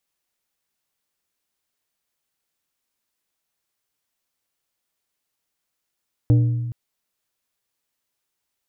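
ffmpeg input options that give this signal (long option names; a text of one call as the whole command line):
ffmpeg -f lavfi -i "aevalsrc='0.299*pow(10,-3*t/1.52)*sin(2*PI*119*t)+0.106*pow(10,-3*t/0.8)*sin(2*PI*297.5*t)+0.0376*pow(10,-3*t/0.576)*sin(2*PI*476*t)+0.0133*pow(10,-3*t/0.493)*sin(2*PI*595*t)+0.00473*pow(10,-3*t/0.41)*sin(2*PI*773.5*t)':duration=0.42:sample_rate=44100" out.wav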